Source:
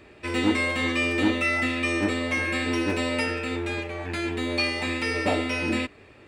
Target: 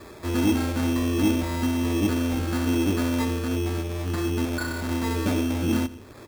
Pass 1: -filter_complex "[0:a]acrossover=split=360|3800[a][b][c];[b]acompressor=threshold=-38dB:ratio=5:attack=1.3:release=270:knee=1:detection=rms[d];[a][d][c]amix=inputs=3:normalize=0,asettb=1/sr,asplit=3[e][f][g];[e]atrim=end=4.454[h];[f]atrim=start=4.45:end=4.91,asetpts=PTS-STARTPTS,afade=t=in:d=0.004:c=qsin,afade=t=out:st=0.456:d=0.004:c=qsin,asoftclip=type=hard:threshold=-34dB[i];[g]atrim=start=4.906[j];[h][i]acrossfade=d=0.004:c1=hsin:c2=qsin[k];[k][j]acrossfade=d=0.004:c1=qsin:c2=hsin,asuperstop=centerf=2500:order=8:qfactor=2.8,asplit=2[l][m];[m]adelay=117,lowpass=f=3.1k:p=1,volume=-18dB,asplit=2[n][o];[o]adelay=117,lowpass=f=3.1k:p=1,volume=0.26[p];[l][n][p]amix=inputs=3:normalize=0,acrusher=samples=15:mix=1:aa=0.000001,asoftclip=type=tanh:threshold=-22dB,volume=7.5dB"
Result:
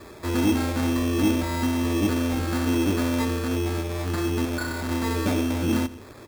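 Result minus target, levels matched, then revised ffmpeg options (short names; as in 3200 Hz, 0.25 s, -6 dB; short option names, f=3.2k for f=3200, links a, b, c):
compressor: peak gain reduction -5 dB
-filter_complex "[0:a]acrossover=split=360|3800[a][b][c];[b]acompressor=threshold=-44.5dB:ratio=5:attack=1.3:release=270:knee=1:detection=rms[d];[a][d][c]amix=inputs=3:normalize=0,asettb=1/sr,asplit=3[e][f][g];[e]atrim=end=4.454[h];[f]atrim=start=4.45:end=4.91,asetpts=PTS-STARTPTS,afade=t=in:d=0.004:c=qsin,afade=t=out:st=0.456:d=0.004:c=qsin,asoftclip=type=hard:threshold=-34dB[i];[g]atrim=start=4.906[j];[h][i]acrossfade=d=0.004:c1=hsin:c2=qsin[k];[k][j]acrossfade=d=0.004:c1=qsin:c2=hsin,asuperstop=centerf=2500:order=8:qfactor=2.8,asplit=2[l][m];[m]adelay=117,lowpass=f=3.1k:p=1,volume=-18dB,asplit=2[n][o];[o]adelay=117,lowpass=f=3.1k:p=1,volume=0.26[p];[l][n][p]amix=inputs=3:normalize=0,acrusher=samples=15:mix=1:aa=0.000001,asoftclip=type=tanh:threshold=-22dB,volume=7.5dB"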